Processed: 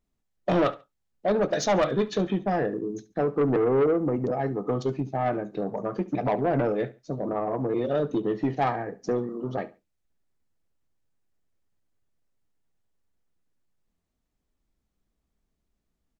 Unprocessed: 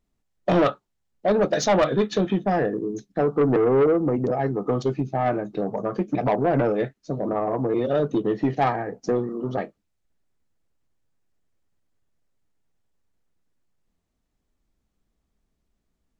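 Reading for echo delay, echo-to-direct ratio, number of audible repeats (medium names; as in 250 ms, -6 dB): 70 ms, -18.0 dB, 2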